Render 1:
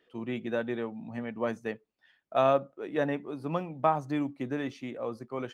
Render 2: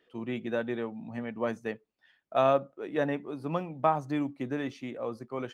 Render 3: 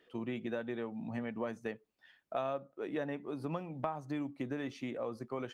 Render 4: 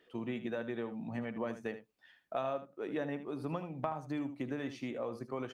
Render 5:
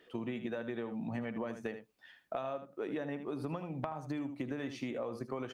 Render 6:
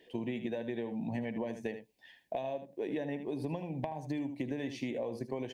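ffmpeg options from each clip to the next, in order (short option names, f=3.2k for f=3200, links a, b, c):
-af anull
-af "acompressor=threshold=-37dB:ratio=4,volume=1.5dB"
-af "aecho=1:1:77:0.251"
-af "acompressor=threshold=-39dB:ratio=6,volume=4.5dB"
-af "asuperstop=centerf=1300:order=4:qfactor=1.7,volume=2dB"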